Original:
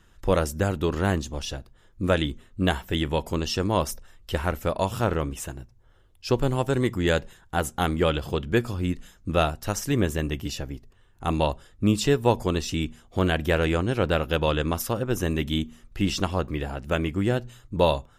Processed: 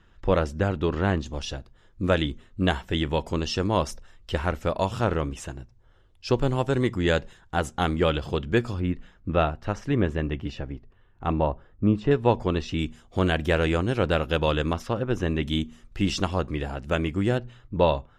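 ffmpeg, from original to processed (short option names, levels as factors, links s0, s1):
-af "asetnsamples=n=441:p=0,asendcmd='1.26 lowpass f 6400;8.8 lowpass f 2500;11.33 lowpass f 1400;12.11 lowpass f 3400;12.79 lowpass f 8400;14.73 lowpass f 3700;15.43 lowpass f 8200;17.38 lowpass f 3100',lowpass=3800"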